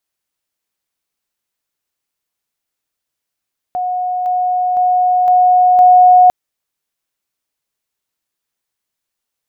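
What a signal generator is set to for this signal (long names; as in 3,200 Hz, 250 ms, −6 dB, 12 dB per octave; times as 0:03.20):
level staircase 728 Hz −15.5 dBFS, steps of 3 dB, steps 5, 0.51 s 0.00 s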